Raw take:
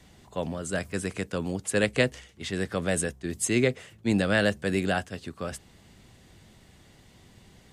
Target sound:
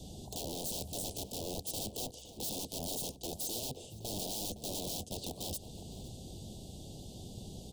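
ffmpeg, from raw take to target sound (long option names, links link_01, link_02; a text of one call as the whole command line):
ffmpeg -i in.wav -filter_complex "[0:a]asettb=1/sr,asplit=3[link_01][link_02][link_03];[link_01]atrim=end=1.954[link_04];[link_02]atrim=start=1.95:end=3.69,asetpts=PTS-STARTPTS,afade=type=in:duration=0.004:curve=qsin,afade=type=out:start_time=1.736:duration=0.004:curve=qsin,lowshelf=frequency=140:gain=-10.5[link_05];[link_03]atrim=start=3.686[link_06];[link_04][link_05]acrossfade=duration=0.004:curve1=hsin:curve2=qsin[link_07];[link_07][link_06]acrossfade=duration=0.004:curve1=qsin:curve2=hsin,acompressor=threshold=-39dB:ratio=3,aeval=exprs='(mod(94.4*val(0)+1,2)-1)/94.4':channel_layout=same,asuperstop=centerf=1600:order=8:qfactor=0.63,asplit=2[link_08][link_09];[link_09]adelay=513.1,volume=-12dB,highshelf=frequency=4000:gain=-11.5[link_10];[link_08][link_10]amix=inputs=2:normalize=0,volume=8dB" out.wav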